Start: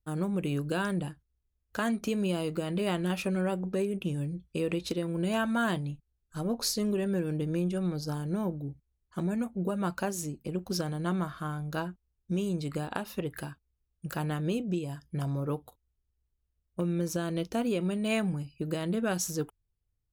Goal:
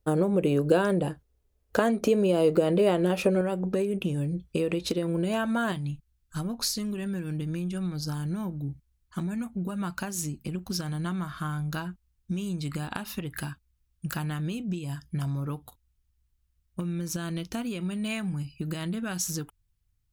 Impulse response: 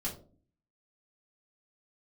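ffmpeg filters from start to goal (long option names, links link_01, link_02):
-af "acompressor=threshold=-33dB:ratio=6,asetnsamples=nb_out_samples=441:pad=0,asendcmd='3.41 equalizer g 2.5;5.72 equalizer g -11',equalizer=frequency=500:width_type=o:width=1.3:gain=11.5,volume=7.5dB"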